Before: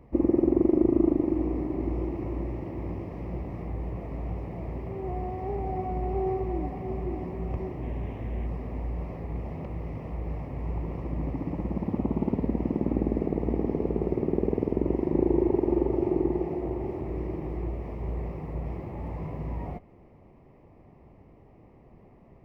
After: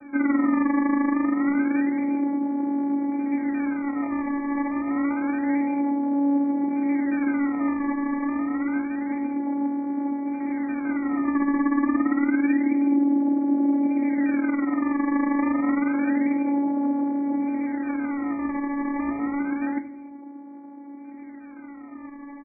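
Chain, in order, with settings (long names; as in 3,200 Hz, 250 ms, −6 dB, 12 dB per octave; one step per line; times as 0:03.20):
comb filter 4.7 ms, depth 57%
in parallel at −2 dB: downward compressor, threshold −38 dBFS, peak gain reduction 18.5 dB
on the sum: brickwall limiter −21 dBFS, peak gain reduction 10.5 dB
channel vocoder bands 8, saw 282 Hz
sample-and-hold swept by an LFO 21×, swing 100% 0.28 Hz
linear-phase brick-wall low-pass 2,400 Hz
convolution reverb RT60 0.45 s, pre-delay 3 ms, DRR 5.5 dB
level +7.5 dB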